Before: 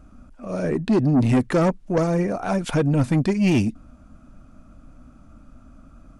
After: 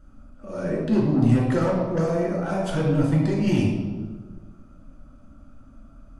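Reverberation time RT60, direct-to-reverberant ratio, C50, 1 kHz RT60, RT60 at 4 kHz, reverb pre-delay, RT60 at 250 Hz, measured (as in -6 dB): 1.5 s, -4.0 dB, 1.0 dB, 1.3 s, 0.95 s, 3 ms, 1.8 s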